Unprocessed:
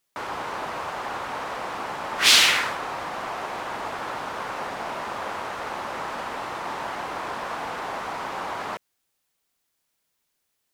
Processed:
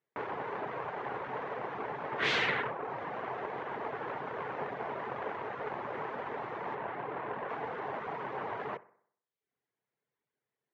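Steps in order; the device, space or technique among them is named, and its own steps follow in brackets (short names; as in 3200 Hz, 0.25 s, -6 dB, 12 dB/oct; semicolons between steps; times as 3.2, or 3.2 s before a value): reverb removal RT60 0.74 s; 6.75–7.49 Bessel low-pass 3000 Hz, order 2; band shelf 3600 Hz -9.5 dB 1.3 oct; analogue delay pedal into a guitar amplifier (analogue delay 63 ms, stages 1024, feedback 49%, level -19 dB; tube stage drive 20 dB, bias 0.8; speaker cabinet 110–3600 Hz, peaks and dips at 130 Hz +9 dB, 430 Hz +9 dB, 1300 Hz -4 dB)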